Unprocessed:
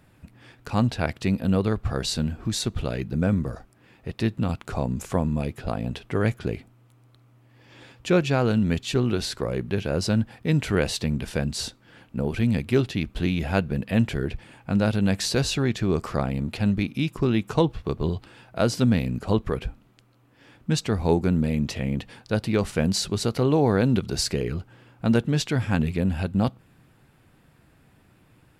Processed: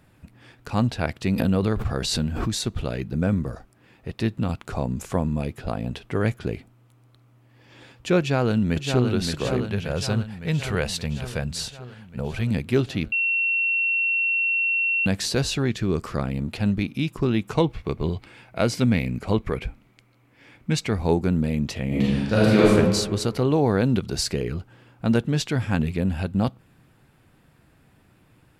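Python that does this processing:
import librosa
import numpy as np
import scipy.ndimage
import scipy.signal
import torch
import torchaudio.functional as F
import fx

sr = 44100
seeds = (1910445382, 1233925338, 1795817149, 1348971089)

y = fx.pre_swell(x, sr, db_per_s=34.0, at=(1.25, 2.64))
y = fx.echo_throw(y, sr, start_s=8.19, length_s=0.9, ms=570, feedback_pct=70, wet_db=-5.5)
y = fx.peak_eq(y, sr, hz=290.0, db=-11.0, octaves=0.77, at=(9.68, 12.51))
y = fx.peak_eq(y, sr, hz=750.0, db=-5.5, octaves=0.77, at=(15.7, 16.36))
y = fx.peak_eq(y, sr, hz=2200.0, db=11.5, octaves=0.25, at=(17.51, 20.98))
y = fx.reverb_throw(y, sr, start_s=21.87, length_s=0.81, rt60_s=1.5, drr_db=-8.5)
y = fx.edit(y, sr, fx.bleep(start_s=13.12, length_s=1.94, hz=2720.0, db=-19.5), tone=tone)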